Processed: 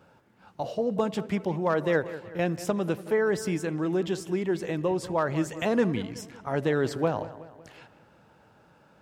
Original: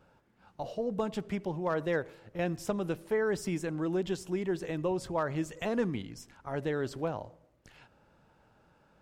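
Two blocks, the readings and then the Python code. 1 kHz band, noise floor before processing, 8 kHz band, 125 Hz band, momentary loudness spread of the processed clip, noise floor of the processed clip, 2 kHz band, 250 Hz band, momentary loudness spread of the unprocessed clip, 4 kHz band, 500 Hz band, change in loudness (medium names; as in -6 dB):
+6.0 dB, -66 dBFS, +5.0 dB, +5.5 dB, 9 LU, -59 dBFS, +5.5 dB, +5.5 dB, 9 LU, +5.5 dB, +5.5 dB, +5.5 dB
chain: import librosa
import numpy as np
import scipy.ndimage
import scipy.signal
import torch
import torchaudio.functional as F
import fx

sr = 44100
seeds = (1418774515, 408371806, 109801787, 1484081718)

p1 = scipy.signal.sosfilt(scipy.signal.butter(2, 85.0, 'highpass', fs=sr, output='sos'), x)
p2 = fx.rider(p1, sr, range_db=10, speed_s=2.0)
p3 = p2 + fx.echo_wet_lowpass(p2, sr, ms=186, feedback_pct=48, hz=3100.0, wet_db=-15.0, dry=0)
y = F.gain(torch.from_numpy(p3), 5.0).numpy()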